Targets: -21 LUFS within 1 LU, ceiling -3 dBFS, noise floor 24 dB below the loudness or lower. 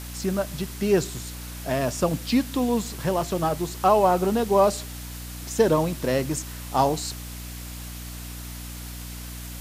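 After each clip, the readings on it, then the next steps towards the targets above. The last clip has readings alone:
hum 60 Hz; harmonics up to 300 Hz; hum level -35 dBFS; noise floor -37 dBFS; noise floor target -48 dBFS; loudness -24.0 LUFS; peak -7.5 dBFS; loudness target -21.0 LUFS
-> de-hum 60 Hz, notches 5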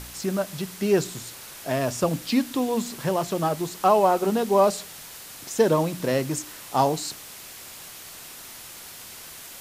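hum none; noise floor -42 dBFS; noise floor target -49 dBFS
-> noise print and reduce 7 dB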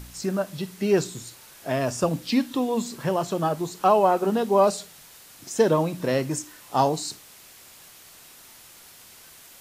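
noise floor -49 dBFS; loudness -24.5 LUFS; peak -7.5 dBFS; loudness target -21.0 LUFS
-> gain +3.5 dB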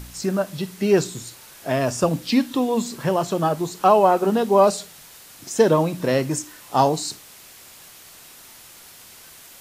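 loudness -21.0 LUFS; peak -4.0 dBFS; noise floor -46 dBFS

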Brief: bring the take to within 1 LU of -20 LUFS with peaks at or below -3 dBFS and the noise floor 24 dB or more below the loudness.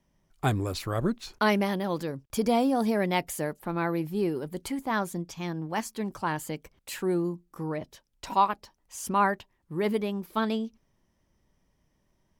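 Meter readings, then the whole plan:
loudness -29.5 LUFS; peak -11.0 dBFS; loudness target -20.0 LUFS
-> gain +9.5 dB; limiter -3 dBFS

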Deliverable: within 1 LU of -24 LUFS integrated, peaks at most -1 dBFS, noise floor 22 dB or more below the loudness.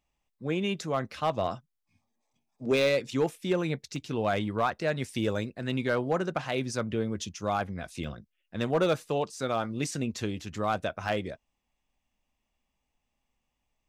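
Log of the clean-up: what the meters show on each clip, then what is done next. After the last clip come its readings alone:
clipped 0.3%; flat tops at -18.0 dBFS; dropouts 2; longest dropout 2.0 ms; loudness -30.5 LUFS; peak -18.0 dBFS; loudness target -24.0 LUFS
-> clip repair -18 dBFS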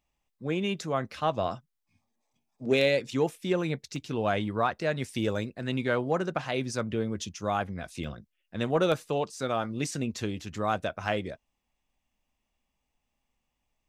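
clipped 0.0%; dropouts 2; longest dropout 2.0 ms
-> interpolate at 3.96/8.04, 2 ms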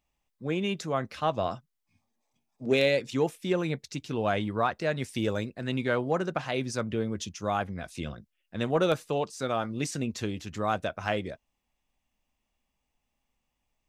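dropouts 0; loudness -30.0 LUFS; peak -10.5 dBFS; loudness target -24.0 LUFS
-> gain +6 dB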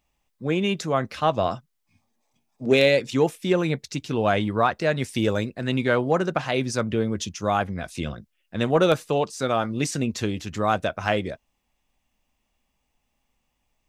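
loudness -24.0 LUFS; peak -4.5 dBFS; noise floor -75 dBFS

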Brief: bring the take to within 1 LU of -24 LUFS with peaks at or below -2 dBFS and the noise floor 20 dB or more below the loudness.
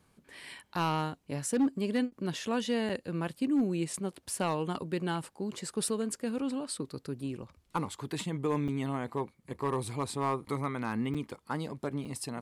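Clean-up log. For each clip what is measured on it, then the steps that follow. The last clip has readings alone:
clipped 0.5%; flat tops at -22.0 dBFS; dropouts 4; longest dropout 5.8 ms; loudness -34.0 LUFS; peak -22.0 dBFS; loudness target -24.0 LUFS
-> clip repair -22 dBFS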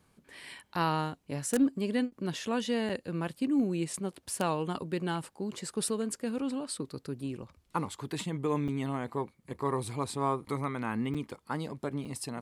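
clipped 0.0%; dropouts 4; longest dropout 5.8 ms
-> interpolate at 2.89/8.68/11.14/12.05, 5.8 ms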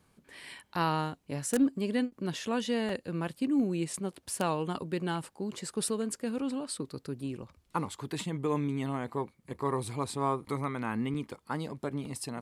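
dropouts 0; loudness -33.5 LUFS; peak -13.0 dBFS; loudness target -24.0 LUFS
-> gain +9.5 dB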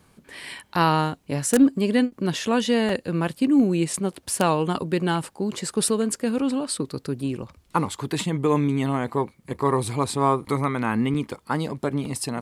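loudness -24.0 LUFS; peak -3.5 dBFS; noise floor -60 dBFS

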